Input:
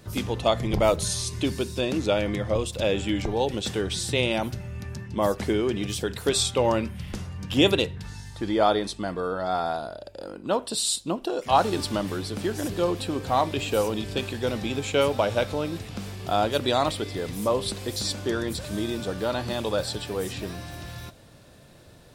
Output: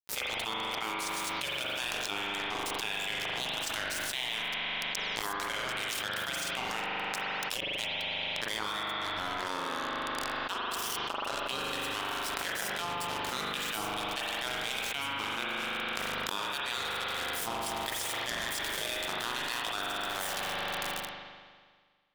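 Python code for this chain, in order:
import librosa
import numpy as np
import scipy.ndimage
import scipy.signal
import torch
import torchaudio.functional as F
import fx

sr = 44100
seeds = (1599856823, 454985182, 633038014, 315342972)

y = fx.spec_gate(x, sr, threshold_db=-15, keep='weak')
y = scipy.signal.sosfilt(scipy.signal.butter(2, 140.0, 'highpass', fs=sr, output='sos'), y)
y = fx.low_shelf(y, sr, hz=320.0, db=-9.0)
y = fx.gate_flip(y, sr, shuts_db=-15.0, range_db=-28)
y = np.sign(y) * np.maximum(np.abs(y) - 10.0 ** (-38.0 / 20.0), 0.0)
y = fx.rev_spring(y, sr, rt60_s=1.7, pass_ms=(40,), chirp_ms=70, drr_db=-1.0)
y = fx.env_flatten(y, sr, amount_pct=100)
y = y * 10.0 ** (-5.5 / 20.0)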